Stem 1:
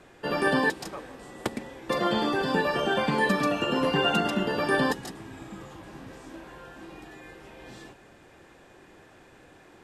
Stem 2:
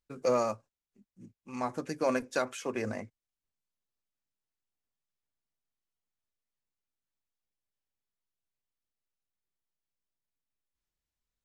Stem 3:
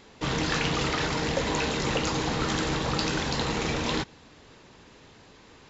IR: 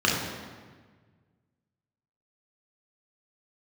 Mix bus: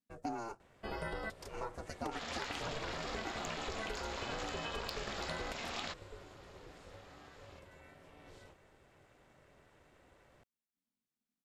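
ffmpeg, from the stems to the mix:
-filter_complex "[0:a]equalizer=frequency=170:width=1.5:gain=5.5,adelay=600,volume=-9.5dB[link_01];[1:a]asplit=2[link_02][link_03];[link_03]adelay=5.2,afreqshift=-1.1[link_04];[link_02][link_04]amix=inputs=2:normalize=1,volume=0dB[link_05];[2:a]highpass=500,bandreject=frequency=6000:width=12,aeval=exprs='0.299*(cos(1*acos(clip(val(0)/0.299,-1,1)))-cos(1*PI/2))+0.0531*(cos(6*acos(clip(val(0)/0.299,-1,1)))-cos(6*PI/2))+0.0299*(cos(8*acos(clip(val(0)/0.299,-1,1)))-cos(8*PI/2))':channel_layout=same,adelay=1900,volume=-4.5dB[link_06];[link_01][link_05][link_06]amix=inputs=3:normalize=0,aeval=exprs='val(0)*sin(2*PI*230*n/s)':channel_layout=same,acompressor=threshold=-36dB:ratio=10"

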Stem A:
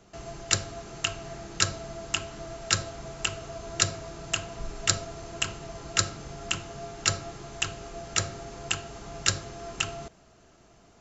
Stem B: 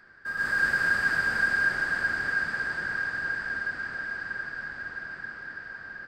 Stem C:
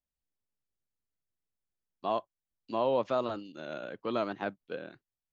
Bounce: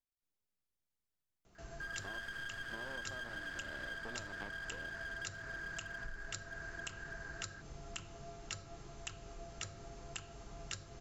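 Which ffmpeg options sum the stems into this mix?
ffmpeg -i stem1.wav -i stem2.wav -i stem3.wav -filter_complex "[0:a]lowshelf=frequency=62:gain=10.5,adelay=1450,volume=-12dB[link_01];[1:a]aeval=exprs='clip(val(0),-1,0.0251)':channel_layout=same,adelay=1550,volume=-8dB[link_02];[2:a]acompressor=threshold=-33dB:ratio=6,aeval=exprs='max(val(0),0)':channel_layout=same,volume=-1.5dB[link_03];[link_01][link_02][link_03]amix=inputs=3:normalize=0,acompressor=threshold=-41dB:ratio=6" out.wav

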